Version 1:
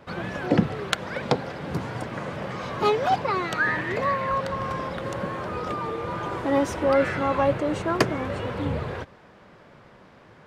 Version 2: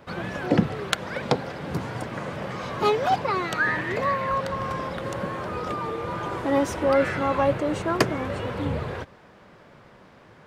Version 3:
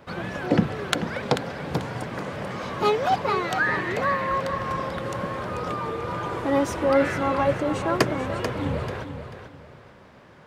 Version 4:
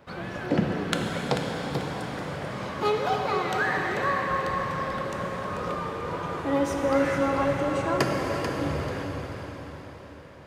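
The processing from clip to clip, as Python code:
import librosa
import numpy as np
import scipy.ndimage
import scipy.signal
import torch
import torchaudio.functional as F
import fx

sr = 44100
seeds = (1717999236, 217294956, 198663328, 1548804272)

y1 = fx.high_shelf(x, sr, hz=9300.0, db=5.0)
y2 = fx.echo_feedback(y1, sr, ms=439, feedback_pct=27, wet_db=-9)
y3 = fx.rev_plate(y2, sr, seeds[0], rt60_s=4.9, hf_ratio=1.0, predelay_ms=0, drr_db=1.0)
y3 = y3 * librosa.db_to_amplitude(-4.5)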